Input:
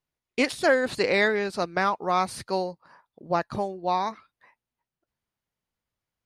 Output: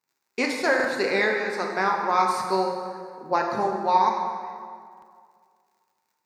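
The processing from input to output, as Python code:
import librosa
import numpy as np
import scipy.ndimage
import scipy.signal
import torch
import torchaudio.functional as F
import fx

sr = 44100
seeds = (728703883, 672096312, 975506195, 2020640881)

y = fx.dmg_crackle(x, sr, seeds[0], per_s=89.0, level_db=-57.0)
y = fx.graphic_eq_31(y, sr, hz=(630, 3150, 10000), db=(-7, -11, -8))
y = fx.rider(y, sr, range_db=4, speed_s=2.0)
y = scipy.signal.sosfilt(scipy.signal.bessel(2, 280.0, 'highpass', norm='mag', fs=sr, output='sos'), y)
y = fx.peak_eq(y, sr, hz=890.0, db=4.5, octaves=0.25)
y = fx.rev_plate(y, sr, seeds[1], rt60_s=2.1, hf_ratio=0.65, predelay_ms=0, drr_db=0.5)
y = fx.buffer_glitch(y, sr, at_s=(0.75, 4.93), block=2048, repeats=1)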